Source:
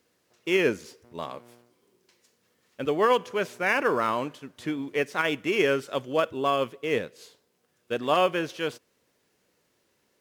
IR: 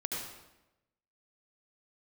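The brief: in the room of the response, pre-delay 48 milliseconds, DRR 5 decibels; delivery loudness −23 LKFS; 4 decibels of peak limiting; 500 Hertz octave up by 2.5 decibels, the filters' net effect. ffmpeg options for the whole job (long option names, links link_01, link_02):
-filter_complex "[0:a]equalizer=frequency=500:width_type=o:gain=3,alimiter=limit=-13.5dB:level=0:latency=1,asplit=2[link_01][link_02];[1:a]atrim=start_sample=2205,adelay=48[link_03];[link_02][link_03]afir=irnorm=-1:irlink=0,volume=-8.5dB[link_04];[link_01][link_04]amix=inputs=2:normalize=0,volume=2.5dB"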